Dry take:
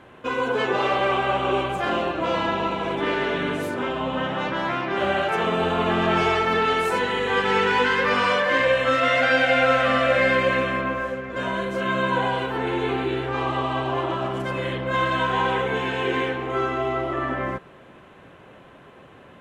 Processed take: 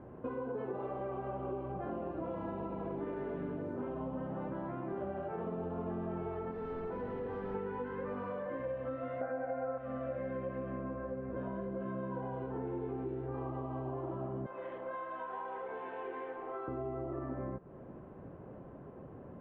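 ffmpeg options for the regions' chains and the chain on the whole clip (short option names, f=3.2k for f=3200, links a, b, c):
-filter_complex "[0:a]asettb=1/sr,asplit=3[a][b][c];[a]atrim=end=2.004[d];[b]atrim=start=2:end=4.1,asetpts=PTS-STARTPTS,afade=t=in:d=0.004:c=qsin,afade=t=out:st=2.096:d=0.004:c=qsin,aemphasis=mode=production:type=75kf,acrossover=split=3700[e][f];[f]adelay=60[g];[e][g]amix=inputs=2:normalize=0,atrim=end_sample=92610[h];[c]atrim=start=4.096[i];[d][h]acrossfade=d=0.004:c1=hsin:c2=qsin[j];[j][i]acrossfade=d=0.004:c1=qsin:c2=hsin,asettb=1/sr,asplit=3[k][l][m];[k]atrim=end=6.514[n];[l]atrim=start=6.51:end=7.55,asetpts=PTS-STARTPTS,afade=t=in:d=0.004:c=qsin,afade=t=out:st=1.036:d=0.004:c=qsin,bandreject=f=900:w=28,asoftclip=type=hard:threshold=-25.5dB[o];[m]atrim=start=7.546[p];[n][o]acrossfade=d=0.004:c1=hsin:c2=qsin[q];[q][p]acrossfade=d=0.004:c1=qsin:c2=hsin,asettb=1/sr,asplit=3[r][s][t];[r]atrim=end=9.214[u];[s]atrim=start=9.21:end=9.78,asetpts=PTS-STARTPTS,afade=t=in:d=0.004:c=qsin,afade=t=out:st=0.566:d=0.004:c=qsin,lowpass=f=2.2k:w=0.5412,lowpass=f=2.2k:w=1.3066,equalizer=f=810:t=o:w=2.6:g=10[v];[t]atrim=start=9.776[w];[u][v]acrossfade=d=0.004:c1=hsin:c2=qsin[x];[x][w]acrossfade=d=0.004:c1=qsin:c2=hsin,asettb=1/sr,asplit=3[y][z][aa];[y]atrim=end=14.464[ab];[z]atrim=start=14.46:end=16.68,asetpts=PTS-STARTPTS,afade=t=in:d=0.004:c=qsin,afade=t=out:st=2.216:d=0.004:c=qsin,highpass=740,aeval=exprs='sgn(val(0))*max(abs(val(0))-0.00188,0)':c=same[ac];[aa]atrim=start=16.676[ad];[ab][ac]acrossfade=d=0.004:c1=hsin:c2=qsin[ae];[ae][ad]acrossfade=d=0.004:c1=qsin:c2=hsin,tiltshelf=f=740:g=6.5,acompressor=threshold=-32dB:ratio=6,lowpass=1.1k,volume=-4.5dB"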